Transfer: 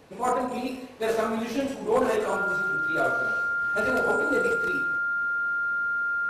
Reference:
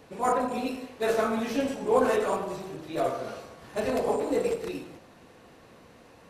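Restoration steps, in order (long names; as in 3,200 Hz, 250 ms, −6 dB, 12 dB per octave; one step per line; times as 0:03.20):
clipped peaks rebuilt −15.5 dBFS
notch filter 1,400 Hz, Q 30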